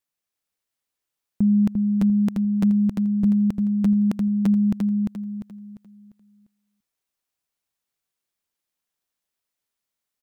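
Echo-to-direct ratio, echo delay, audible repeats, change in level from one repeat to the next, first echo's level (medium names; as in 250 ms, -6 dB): -3.0 dB, 348 ms, 4, -9.0 dB, -3.5 dB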